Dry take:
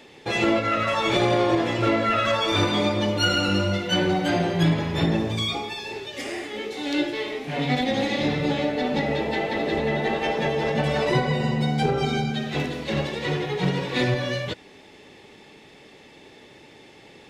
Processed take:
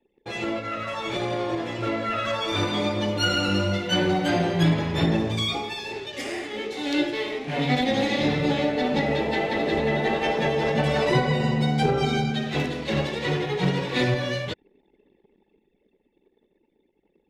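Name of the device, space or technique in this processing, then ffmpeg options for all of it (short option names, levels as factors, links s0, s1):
voice memo with heavy noise removal: -af "anlmdn=0.251,dynaudnorm=f=260:g=21:m=3.76,volume=0.422"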